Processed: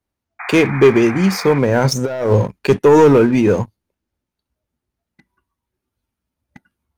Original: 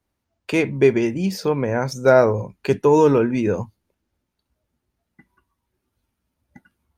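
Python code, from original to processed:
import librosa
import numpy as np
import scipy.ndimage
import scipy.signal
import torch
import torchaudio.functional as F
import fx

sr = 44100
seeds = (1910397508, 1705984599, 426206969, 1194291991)

y = fx.leveller(x, sr, passes=2)
y = fx.spec_paint(y, sr, seeds[0], shape='noise', start_s=0.39, length_s=1.2, low_hz=680.0, high_hz=2500.0, level_db=-29.0)
y = fx.over_compress(y, sr, threshold_db=-14.0, ratio=-0.5, at=(1.84, 2.59))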